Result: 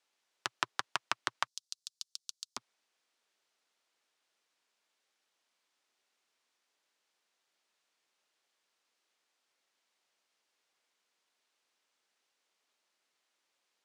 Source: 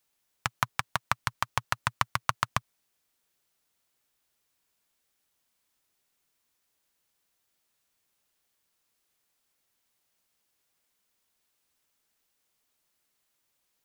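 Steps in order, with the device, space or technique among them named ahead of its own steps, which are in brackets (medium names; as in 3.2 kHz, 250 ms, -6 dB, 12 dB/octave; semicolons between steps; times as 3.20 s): 1.47–2.57 s: inverse Chebyshev high-pass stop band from 2.2 kHz, stop band 40 dB; public-address speaker with an overloaded transformer (transformer saturation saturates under 3.4 kHz; band-pass 340–5900 Hz); trim +1 dB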